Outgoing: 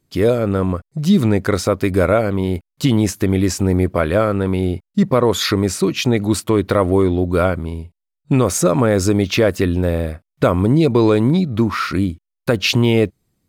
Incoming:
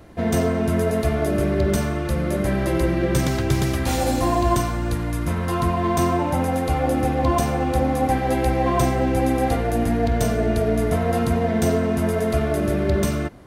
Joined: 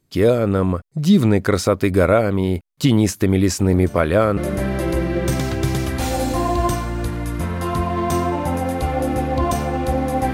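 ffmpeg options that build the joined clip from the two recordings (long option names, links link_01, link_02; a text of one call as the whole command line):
ffmpeg -i cue0.wav -i cue1.wav -filter_complex "[1:a]asplit=2[link_01][link_02];[0:a]apad=whole_dur=10.33,atrim=end=10.33,atrim=end=4.372[link_03];[link_02]atrim=start=2.238:end=8.2[link_04];[link_01]atrim=start=1.47:end=2.24,asetpts=PTS-STARTPTS,volume=-15.5dB,afade=type=in:duration=0.004:curve=hsin,afade=type=out:start_time=0.766:duration=0.004:curve=hsin,adelay=3600[link_05];[link_03][link_04]acrossfade=duration=0.004:curve1=hsin:curve2=hsin[link_06];[link_06][link_05]amix=inputs=2:normalize=0" out.wav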